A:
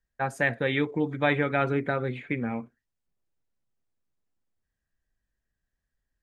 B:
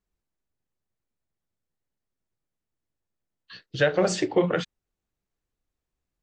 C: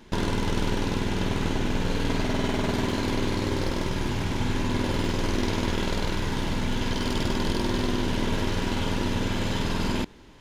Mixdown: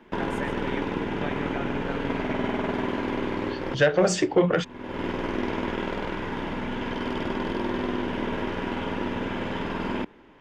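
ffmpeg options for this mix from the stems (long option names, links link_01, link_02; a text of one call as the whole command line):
ffmpeg -i stem1.wav -i stem2.wav -i stem3.wav -filter_complex "[0:a]acompressor=threshold=-28dB:ratio=6,volume=-4dB,asplit=2[link_01][link_02];[link_02]volume=-10dB[link_03];[1:a]asoftclip=type=tanh:threshold=-12dB,volume=3dB,asplit=2[link_04][link_05];[2:a]acrossover=split=200 3000:gain=0.251 1 0.0891[link_06][link_07][link_08];[link_06][link_07][link_08]amix=inputs=3:normalize=0,volume=1dB[link_09];[link_05]apad=whole_len=458897[link_10];[link_09][link_10]sidechaincompress=threshold=-39dB:ratio=6:attack=5.4:release=317[link_11];[link_03]aecho=0:1:138:1[link_12];[link_01][link_04][link_11][link_12]amix=inputs=4:normalize=0,equalizer=frequency=4100:width_type=o:width=0.22:gain=-7" out.wav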